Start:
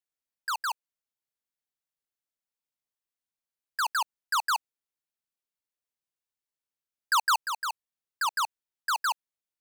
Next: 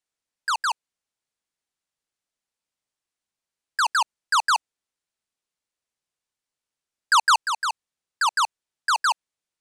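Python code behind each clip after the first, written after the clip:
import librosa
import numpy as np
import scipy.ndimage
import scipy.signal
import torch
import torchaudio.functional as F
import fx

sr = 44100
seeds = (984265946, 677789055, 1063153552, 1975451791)

y = scipy.signal.sosfilt(scipy.signal.butter(4, 10000.0, 'lowpass', fs=sr, output='sos'), x)
y = F.gain(torch.from_numpy(y), 6.5).numpy()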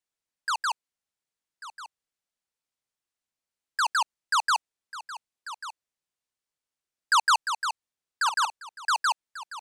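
y = x + 10.0 ** (-14.5 / 20.0) * np.pad(x, (int(1142 * sr / 1000.0), 0))[:len(x)]
y = F.gain(torch.from_numpy(y), -3.5).numpy()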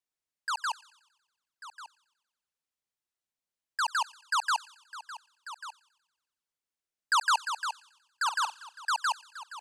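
y = fx.echo_wet_highpass(x, sr, ms=92, feedback_pct=56, hz=2100.0, wet_db=-17.5)
y = F.gain(torch.from_numpy(y), -4.0).numpy()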